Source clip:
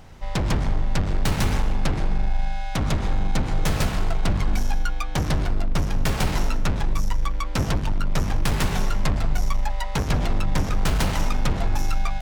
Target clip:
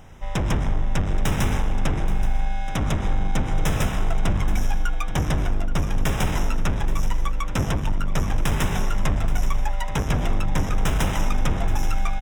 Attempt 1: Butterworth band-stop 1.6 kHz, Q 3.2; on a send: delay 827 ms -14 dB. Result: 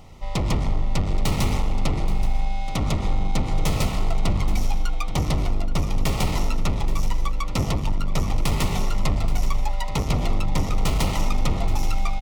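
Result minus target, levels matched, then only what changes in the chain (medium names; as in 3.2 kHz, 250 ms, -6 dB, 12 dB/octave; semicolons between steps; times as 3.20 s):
2 kHz band -3.0 dB
change: Butterworth band-stop 4.4 kHz, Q 3.2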